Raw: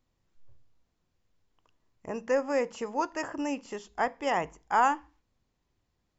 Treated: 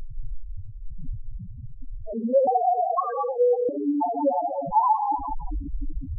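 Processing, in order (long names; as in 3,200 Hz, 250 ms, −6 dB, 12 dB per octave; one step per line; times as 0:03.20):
linear delta modulator 32 kbit/s, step −31 dBFS
harmonic generator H 3 −26 dB, 8 −33 dB, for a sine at −12 dBFS
convolution reverb RT60 3.0 s, pre-delay 3 ms, DRR −4.5 dB
spectral peaks only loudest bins 2
0:02.47–0:03.69: frequency shifter +200 Hz
in parallel at +2.5 dB: downward compressor, threshold −28 dBFS, peak gain reduction 7 dB
on the sum: level +2 dB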